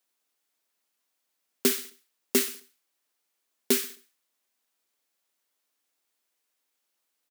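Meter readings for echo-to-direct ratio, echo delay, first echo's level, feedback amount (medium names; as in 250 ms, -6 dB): -17.5 dB, 66 ms, -18.5 dB, 44%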